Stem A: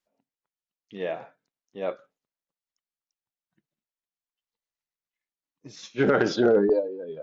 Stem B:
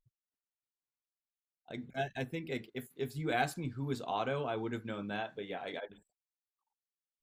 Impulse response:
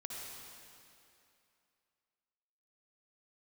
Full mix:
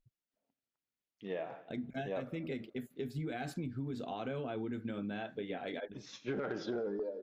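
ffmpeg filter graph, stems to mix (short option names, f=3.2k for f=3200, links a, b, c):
-filter_complex "[0:a]dynaudnorm=f=210:g=9:m=8.5dB,adelay=300,volume=-10.5dB,asplit=2[a][b];[b]volume=-19dB[c];[1:a]equalizer=f=250:t=o:w=0.67:g=6,equalizer=f=1k:t=o:w=0.67:g=-8,equalizer=f=10k:t=o:w=0.67:g=-4,alimiter=level_in=5.5dB:limit=-24dB:level=0:latency=1:release=69,volume=-5.5dB,volume=2.5dB[d];[c]aecho=0:1:88|176|264|352|440|528|616|704|792:1|0.57|0.325|0.185|0.106|0.0602|0.0343|0.0195|0.0111[e];[a][d][e]amix=inputs=3:normalize=0,aemphasis=mode=reproduction:type=cd,asoftclip=type=tanh:threshold=-16dB,acompressor=threshold=-35dB:ratio=6"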